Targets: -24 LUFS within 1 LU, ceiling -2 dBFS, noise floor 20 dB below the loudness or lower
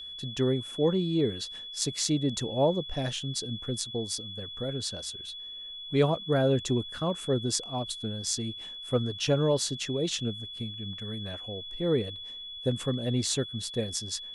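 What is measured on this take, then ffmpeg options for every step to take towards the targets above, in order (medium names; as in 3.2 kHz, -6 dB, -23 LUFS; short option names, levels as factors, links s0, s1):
steady tone 3.4 kHz; tone level -39 dBFS; loudness -30.0 LUFS; peak level -10.0 dBFS; loudness target -24.0 LUFS
-> -af "bandreject=f=3400:w=30"
-af "volume=2"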